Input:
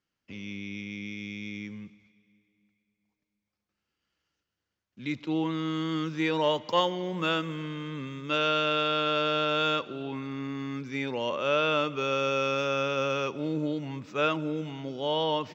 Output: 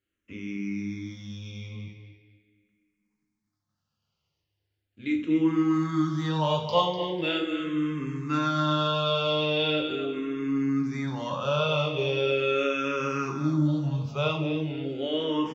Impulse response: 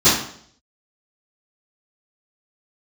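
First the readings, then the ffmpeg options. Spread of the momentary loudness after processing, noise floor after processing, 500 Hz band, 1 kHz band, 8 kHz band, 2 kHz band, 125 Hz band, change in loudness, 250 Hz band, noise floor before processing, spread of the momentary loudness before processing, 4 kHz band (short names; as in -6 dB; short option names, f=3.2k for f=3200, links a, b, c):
13 LU, -82 dBFS, +1.0 dB, 0.0 dB, n/a, -1.5 dB, +7.0 dB, +2.0 dB, +5.5 dB, under -85 dBFS, 12 LU, +0.5 dB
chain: -filter_complex "[0:a]lowshelf=f=100:g=9.5,aecho=1:1:248|496|744:0.355|0.0923|0.024,asplit=2[a][b];[1:a]atrim=start_sample=2205[c];[b][c]afir=irnorm=-1:irlink=0,volume=-25dB[d];[a][d]amix=inputs=2:normalize=0,asplit=2[e][f];[f]afreqshift=-0.4[g];[e][g]amix=inputs=2:normalize=1"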